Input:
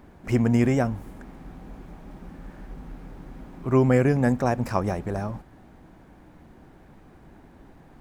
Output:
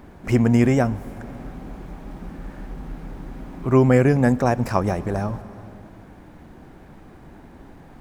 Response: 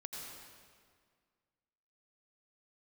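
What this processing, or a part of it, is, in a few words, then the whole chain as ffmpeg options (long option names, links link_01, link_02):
ducked reverb: -filter_complex "[0:a]asplit=3[link_01][link_02][link_03];[1:a]atrim=start_sample=2205[link_04];[link_02][link_04]afir=irnorm=-1:irlink=0[link_05];[link_03]apad=whole_len=353222[link_06];[link_05][link_06]sidechaincompress=threshold=-32dB:ratio=8:attack=16:release=516,volume=-6dB[link_07];[link_01][link_07]amix=inputs=2:normalize=0,volume=3.5dB"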